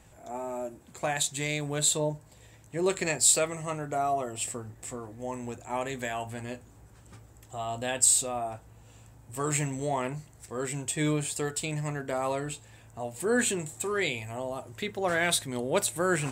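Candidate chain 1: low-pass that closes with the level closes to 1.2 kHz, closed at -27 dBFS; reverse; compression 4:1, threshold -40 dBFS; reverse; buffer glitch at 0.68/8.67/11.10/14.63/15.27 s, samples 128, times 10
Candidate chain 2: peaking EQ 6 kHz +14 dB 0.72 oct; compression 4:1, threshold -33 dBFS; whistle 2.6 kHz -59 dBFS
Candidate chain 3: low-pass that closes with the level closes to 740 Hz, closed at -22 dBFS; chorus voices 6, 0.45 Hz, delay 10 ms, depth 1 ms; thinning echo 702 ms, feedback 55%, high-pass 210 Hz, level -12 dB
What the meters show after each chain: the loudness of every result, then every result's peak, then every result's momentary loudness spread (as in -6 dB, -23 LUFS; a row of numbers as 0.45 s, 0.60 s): -43.5 LUFS, -35.5 LUFS, -36.5 LUFS; -28.0 dBFS, -16.5 dBFS, -15.5 dBFS; 8 LU, 11 LU, 12 LU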